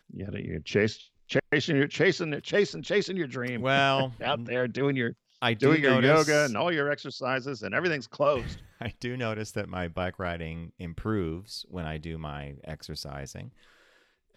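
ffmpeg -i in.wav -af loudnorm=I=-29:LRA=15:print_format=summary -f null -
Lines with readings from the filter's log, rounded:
Input Integrated:    -28.4 LUFS
Input True Peak:      -8.6 dBTP
Input LRA:            14.2 LU
Input Threshold:     -39.3 LUFS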